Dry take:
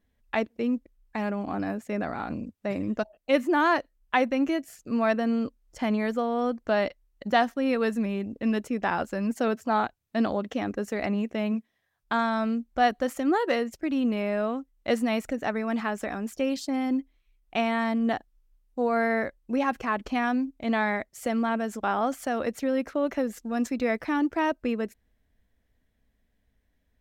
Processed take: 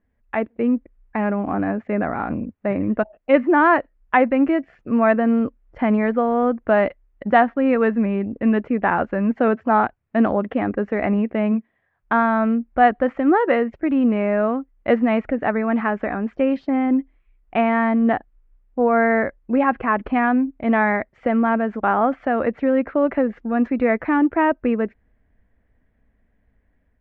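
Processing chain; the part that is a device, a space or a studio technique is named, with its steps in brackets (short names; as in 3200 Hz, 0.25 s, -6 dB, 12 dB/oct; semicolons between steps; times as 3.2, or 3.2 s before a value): action camera in a waterproof case (LPF 2200 Hz 24 dB/oct; AGC gain up to 5.5 dB; gain +2.5 dB; AAC 128 kbps 48000 Hz)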